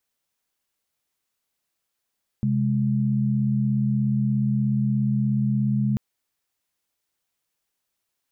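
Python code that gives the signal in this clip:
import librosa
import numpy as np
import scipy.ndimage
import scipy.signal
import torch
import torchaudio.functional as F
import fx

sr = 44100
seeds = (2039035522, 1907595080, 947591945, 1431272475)

y = fx.chord(sr, length_s=3.54, notes=(48, 56), wave='sine', level_db=-22.0)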